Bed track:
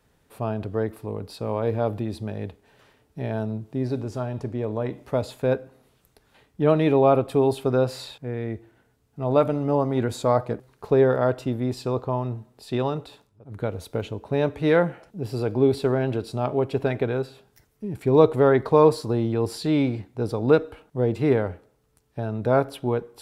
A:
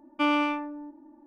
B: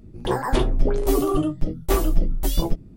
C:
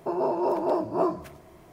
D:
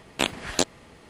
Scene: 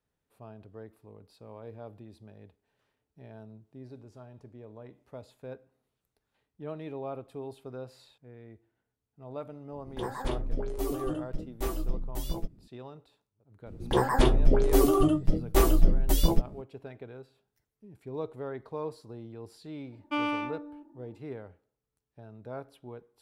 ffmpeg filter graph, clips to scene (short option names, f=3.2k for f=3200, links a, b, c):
-filter_complex "[2:a]asplit=2[a][b];[0:a]volume=-20dB[c];[a]atrim=end=2.96,asetpts=PTS-STARTPTS,volume=-12dB,afade=t=in:d=0.004:c=hsin,afade=t=out:st=2.956:d=0.004:c=hsin,adelay=9720[d];[b]atrim=end=2.96,asetpts=PTS-STARTPTS,volume=-1.5dB,afade=t=in:d=0.004:c=hsin,afade=t=out:st=2.956:d=0.004:c=hsin,adelay=13660[e];[1:a]atrim=end=1.26,asetpts=PTS-STARTPTS,volume=-5.5dB,afade=t=in:d=0.004:c=hsin,afade=t=out:st=1.256:d=0.004:c=hsin,adelay=19920[f];[c][d][e][f]amix=inputs=4:normalize=0"